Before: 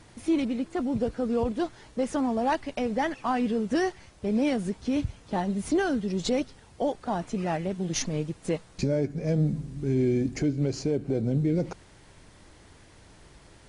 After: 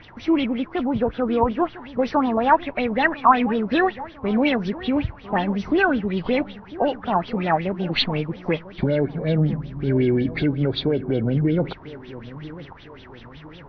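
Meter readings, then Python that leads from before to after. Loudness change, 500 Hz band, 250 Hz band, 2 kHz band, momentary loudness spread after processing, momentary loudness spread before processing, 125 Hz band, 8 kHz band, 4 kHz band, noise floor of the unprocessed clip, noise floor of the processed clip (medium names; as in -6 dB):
+6.0 dB, +5.5 dB, +5.0 dB, +12.0 dB, 11 LU, 6 LU, +5.0 dB, under -20 dB, +10.0 dB, -54 dBFS, -44 dBFS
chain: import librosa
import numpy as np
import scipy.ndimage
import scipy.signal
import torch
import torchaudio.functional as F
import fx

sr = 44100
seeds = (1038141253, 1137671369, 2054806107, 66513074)

y = fx.freq_compress(x, sr, knee_hz=2100.0, ratio=1.5)
y = fx.echo_wet_lowpass(y, sr, ms=999, feedback_pct=43, hz=1900.0, wet_db=-17.0)
y = fx.filter_lfo_lowpass(y, sr, shape='sine', hz=5.4, low_hz=940.0, high_hz=3600.0, q=5.7)
y = F.gain(torch.from_numpy(y), 4.5).numpy()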